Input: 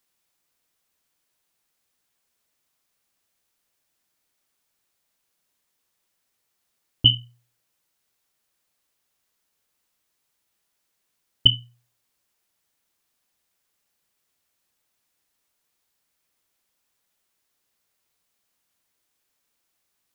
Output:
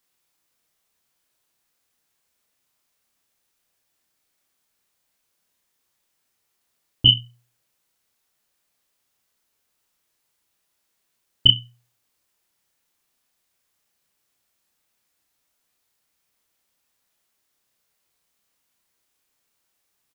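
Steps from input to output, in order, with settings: doubler 31 ms -3 dB

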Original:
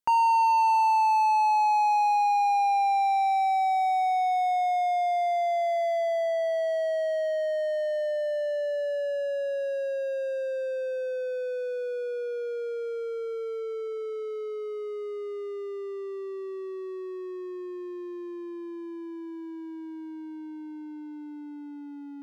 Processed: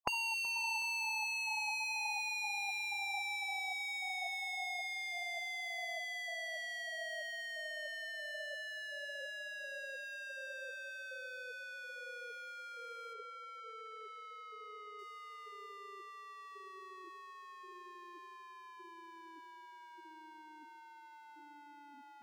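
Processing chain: tape echo 0.373 s, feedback 61%, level -20 dB, low-pass 1500 Hz; spectral gate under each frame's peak -10 dB weak; 13.13–14.99 LPF 3200 Hz 6 dB/oct; gain +2 dB

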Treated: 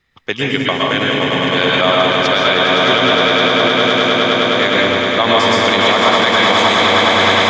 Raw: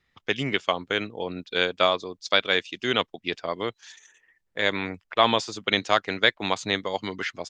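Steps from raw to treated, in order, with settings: swelling echo 0.103 s, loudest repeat 8, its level -7.5 dB; reverb RT60 0.55 s, pre-delay 0.108 s, DRR -1 dB; maximiser +7.5 dB; gain -1 dB

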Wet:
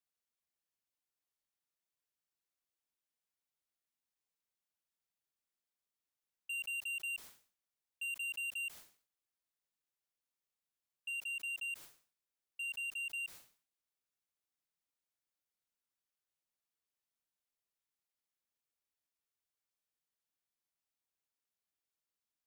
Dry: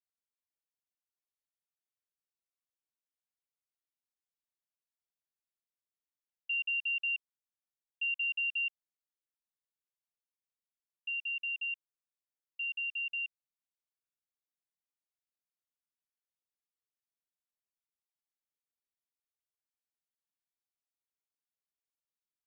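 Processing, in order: soft clip -39 dBFS, distortion -11 dB; sustainer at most 130 dB/s; gain +1 dB

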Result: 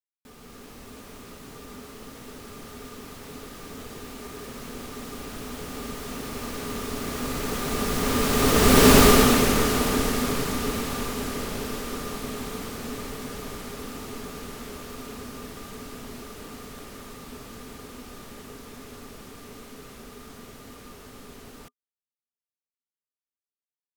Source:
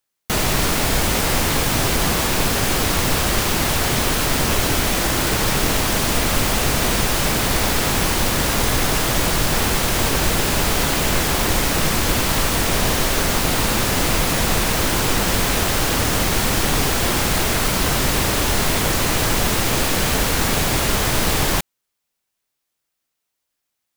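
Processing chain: Doppler pass-by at 8.94, 54 m/s, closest 13 m; AGC gain up to 5 dB; small resonant body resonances 250/420/1200 Hz, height 13 dB, ringing for 65 ms; gain -1 dB

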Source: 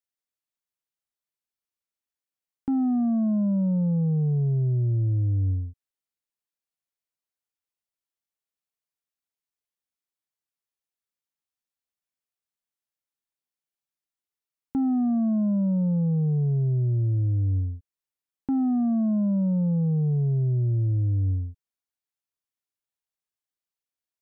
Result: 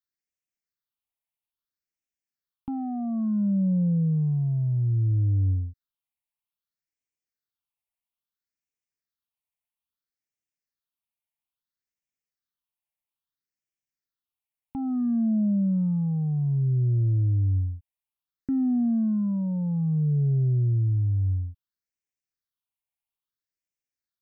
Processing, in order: phaser stages 6, 0.6 Hz, lowest notch 380–1100 Hz

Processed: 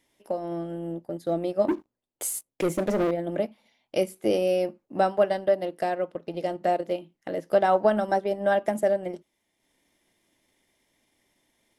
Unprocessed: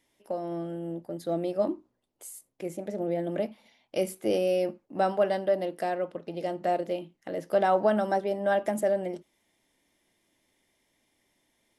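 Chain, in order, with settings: 1.68–3.11 sample leveller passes 3; transient shaper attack +2 dB, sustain -6 dB; gain +2 dB

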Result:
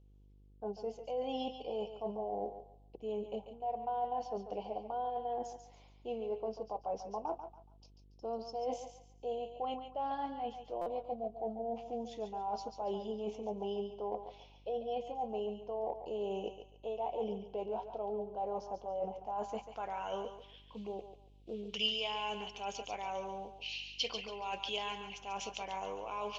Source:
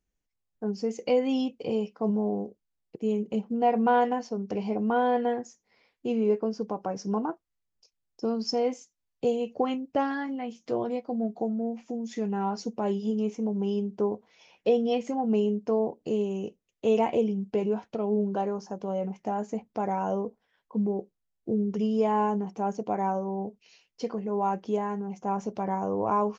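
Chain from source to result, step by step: dynamic EQ 600 Hz, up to +5 dB, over -36 dBFS, Q 1.1; band-pass sweep 780 Hz -> 2500 Hz, 19.06–20.4; reverse; compressor 8:1, threshold -45 dBFS, peak gain reduction 27 dB; reverse; buzz 50 Hz, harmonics 10, -71 dBFS -8 dB/oct; resonant high shelf 2400 Hz +9 dB, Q 3; on a send: thinning echo 0.141 s, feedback 32%, high-pass 530 Hz, level -7.5 dB; on the sum: stuck buffer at 10.81, samples 256, times 8; gain +9.5 dB

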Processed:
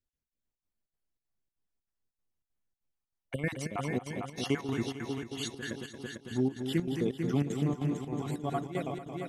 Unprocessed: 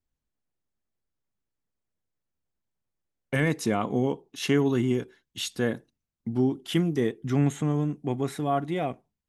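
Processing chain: random spectral dropouts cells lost 35%; multi-head echo 0.224 s, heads first and second, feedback 61%, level -8 dB; chopper 3.2 Hz, depth 65%, duty 75%; gain -5 dB

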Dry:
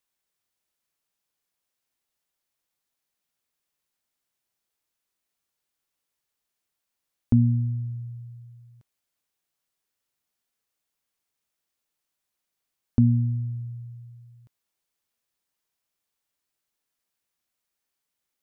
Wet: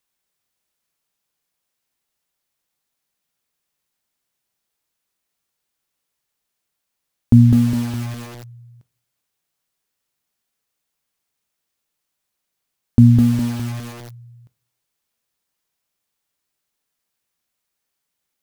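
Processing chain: bell 150 Hz +3 dB 0.69 oct; in parallel at -9 dB: bit-crush 6-bit; on the sum: reverb, pre-delay 3 ms, DRR 15 dB; lo-fi delay 0.205 s, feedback 55%, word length 6-bit, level -3.5 dB; gain +4.5 dB

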